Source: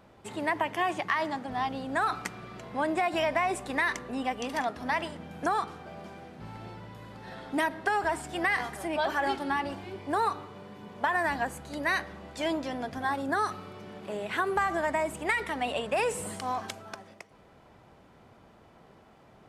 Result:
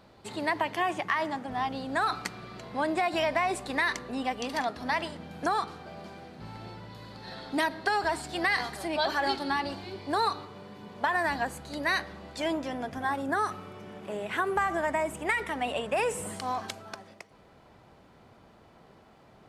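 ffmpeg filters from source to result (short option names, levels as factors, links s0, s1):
-af "asetnsamples=n=441:p=0,asendcmd='0.79 equalizer g -1.5;1.72 equalizer g 8;6.9 equalizer g 14;10.45 equalizer g 6.5;12.4 equalizer g -4.5;16.36 equalizer g 4',equalizer=f=4300:t=o:w=0.39:g=10.5"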